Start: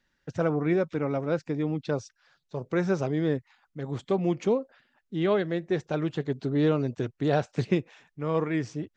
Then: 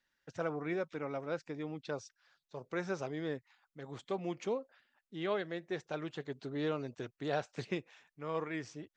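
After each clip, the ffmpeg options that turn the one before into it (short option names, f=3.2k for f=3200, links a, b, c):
-af "lowshelf=f=390:g=-11.5,volume=-5.5dB"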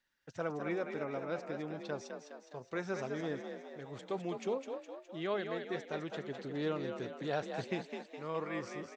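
-filter_complex "[0:a]asplit=8[a][b][c][d][e][f][g][h];[b]adelay=207,afreqshift=45,volume=-6.5dB[i];[c]adelay=414,afreqshift=90,volume=-11.9dB[j];[d]adelay=621,afreqshift=135,volume=-17.2dB[k];[e]adelay=828,afreqshift=180,volume=-22.6dB[l];[f]adelay=1035,afreqshift=225,volume=-27.9dB[m];[g]adelay=1242,afreqshift=270,volume=-33.3dB[n];[h]adelay=1449,afreqshift=315,volume=-38.6dB[o];[a][i][j][k][l][m][n][o]amix=inputs=8:normalize=0,volume=-1dB"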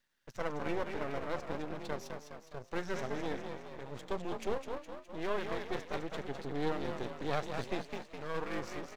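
-af "aeval=exprs='max(val(0),0)':c=same,volume=5.5dB"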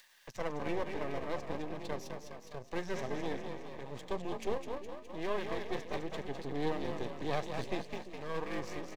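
-filter_complex "[0:a]bandreject=f=1.4k:w=5.1,acrossover=split=600[a][b];[a]aecho=1:1:344:0.237[c];[b]acompressor=mode=upward:threshold=-47dB:ratio=2.5[d];[c][d]amix=inputs=2:normalize=0"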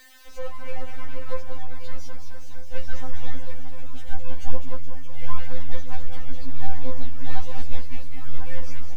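-af "aeval=exprs='val(0)+0.5*0.00562*sgn(val(0))':c=same,asubboost=boost=11:cutoff=110,afftfilt=real='re*3.46*eq(mod(b,12),0)':imag='im*3.46*eq(mod(b,12),0)':win_size=2048:overlap=0.75,volume=1dB"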